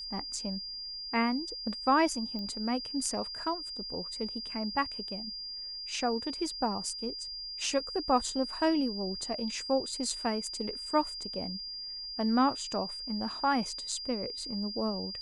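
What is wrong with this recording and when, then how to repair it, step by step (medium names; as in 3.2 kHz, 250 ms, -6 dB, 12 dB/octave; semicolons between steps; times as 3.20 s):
whine 4.8 kHz -38 dBFS
2.39 s: pop -28 dBFS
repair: de-click; band-stop 4.8 kHz, Q 30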